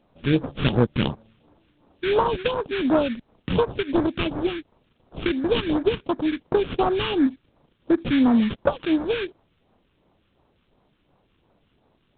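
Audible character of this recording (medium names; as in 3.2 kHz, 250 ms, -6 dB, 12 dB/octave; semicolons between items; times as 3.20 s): aliases and images of a low sample rate 2 kHz, jitter 20%; phasing stages 2, 2.8 Hz, lowest notch 690–2800 Hz; A-law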